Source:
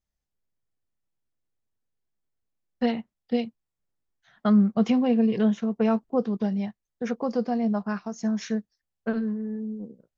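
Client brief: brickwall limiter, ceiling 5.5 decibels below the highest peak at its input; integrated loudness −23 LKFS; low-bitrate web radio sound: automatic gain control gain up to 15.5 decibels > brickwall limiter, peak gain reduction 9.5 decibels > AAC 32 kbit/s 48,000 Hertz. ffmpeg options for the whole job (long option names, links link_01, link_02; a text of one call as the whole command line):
ffmpeg -i in.wav -af "alimiter=limit=-17dB:level=0:latency=1,dynaudnorm=maxgain=15.5dB,alimiter=level_in=2.5dB:limit=-24dB:level=0:latency=1,volume=-2.5dB,volume=12dB" -ar 48000 -c:a aac -b:a 32k out.aac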